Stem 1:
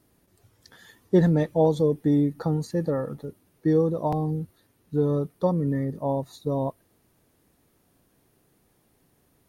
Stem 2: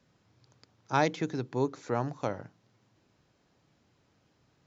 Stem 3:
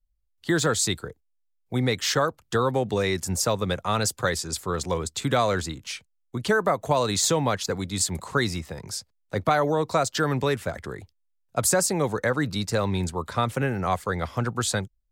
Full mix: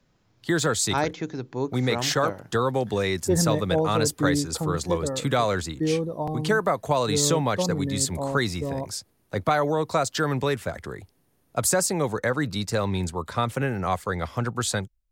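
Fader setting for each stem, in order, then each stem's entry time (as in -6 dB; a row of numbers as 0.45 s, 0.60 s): -3.5 dB, +1.0 dB, -0.5 dB; 2.15 s, 0.00 s, 0.00 s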